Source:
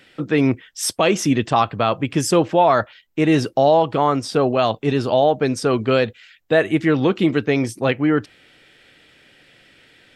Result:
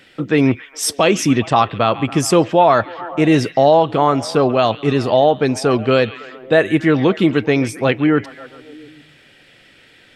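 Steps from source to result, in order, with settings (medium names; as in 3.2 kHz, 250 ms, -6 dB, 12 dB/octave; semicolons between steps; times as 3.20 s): repeats whose band climbs or falls 138 ms, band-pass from 2.5 kHz, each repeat -0.7 oct, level -11.5 dB; trim +3 dB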